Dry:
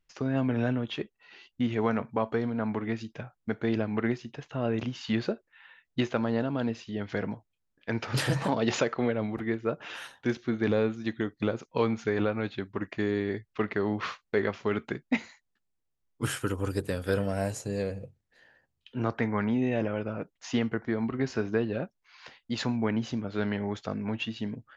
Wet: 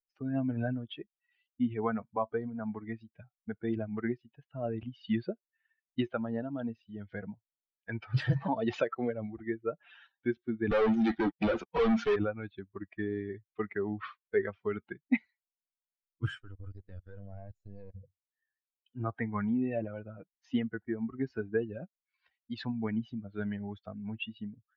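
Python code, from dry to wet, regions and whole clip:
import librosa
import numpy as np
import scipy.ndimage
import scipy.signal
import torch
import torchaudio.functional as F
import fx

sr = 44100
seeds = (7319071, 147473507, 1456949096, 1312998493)

y = fx.chain(x, sr, fx.highpass(hz=170.0, slope=24),
    fx.leveller(passes=5),
    fx.overload_stage(gain_db=23.0), at=(10.71, 12.16))
y = fx.chain(y, sr, fx.halfwave_gain(db=-7.0),
    fx.level_steps(step_db=18), at=(16.4, 17.95))
y = fx.bin_expand(y, sr, power=2.0)
y = scipy.signal.sosfilt(scipy.signal.bessel(4, 2700.0, 'lowpass', norm='mag', fs=sr, output='sos'), y)
y = fx.low_shelf(y, sr, hz=93.0, db=5.0)
y = y * 10.0 ** (1.5 / 20.0)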